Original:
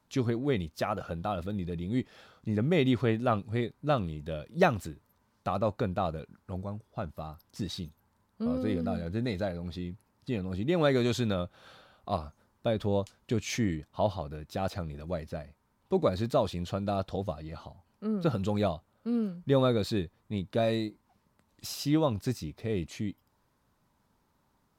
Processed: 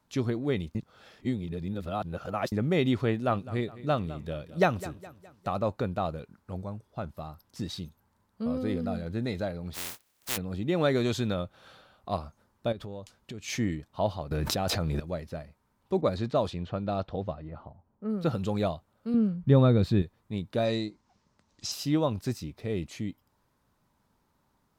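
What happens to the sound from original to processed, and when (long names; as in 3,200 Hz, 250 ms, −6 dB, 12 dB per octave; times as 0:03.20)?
0:00.75–0:02.52: reverse
0:03.10–0:05.51: repeating echo 207 ms, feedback 46%, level −17 dB
0:09.73–0:10.36: compressing power law on the bin magnitudes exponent 0.11
0:12.72–0:13.48: downward compressor, threshold −37 dBFS
0:14.31–0:15.00: envelope flattener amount 100%
0:16.01–0:18.10: low-pass that shuts in the quiet parts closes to 760 Hz, open at −22.5 dBFS
0:19.14–0:20.02: bass and treble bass +10 dB, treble −8 dB
0:20.65–0:21.72: low-pass with resonance 6,100 Hz, resonance Q 2.3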